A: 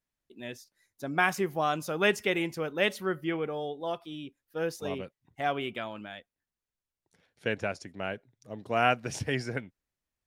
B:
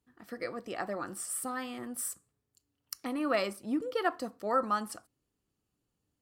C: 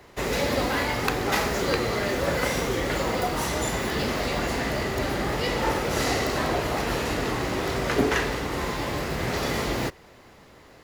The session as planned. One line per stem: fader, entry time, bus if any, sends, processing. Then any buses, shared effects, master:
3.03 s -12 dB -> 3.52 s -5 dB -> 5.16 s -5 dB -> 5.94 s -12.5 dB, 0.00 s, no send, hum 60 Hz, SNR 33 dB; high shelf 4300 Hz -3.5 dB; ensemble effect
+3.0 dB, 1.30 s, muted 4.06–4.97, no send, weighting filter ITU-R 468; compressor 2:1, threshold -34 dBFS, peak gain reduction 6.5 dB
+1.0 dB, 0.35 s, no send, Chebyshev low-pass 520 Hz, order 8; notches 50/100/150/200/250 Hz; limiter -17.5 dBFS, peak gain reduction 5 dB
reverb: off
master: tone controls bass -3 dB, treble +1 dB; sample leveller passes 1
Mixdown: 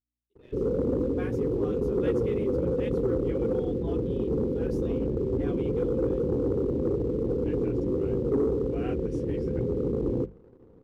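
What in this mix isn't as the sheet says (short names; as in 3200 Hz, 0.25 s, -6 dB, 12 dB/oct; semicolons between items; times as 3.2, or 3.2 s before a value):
stem A -12.0 dB -> -18.5 dB; stem B: muted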